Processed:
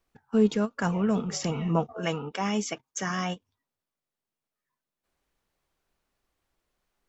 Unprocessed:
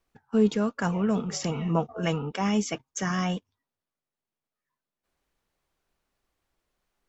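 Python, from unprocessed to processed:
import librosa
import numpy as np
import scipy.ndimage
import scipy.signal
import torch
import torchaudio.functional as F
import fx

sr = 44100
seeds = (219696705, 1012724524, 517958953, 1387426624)

y = fx.low_shelf(x, sr, hz=160.0, db=-10.5, at=(1.93, 3.36))
y = fx.end_taper(y, sr, db_per_s=520.0)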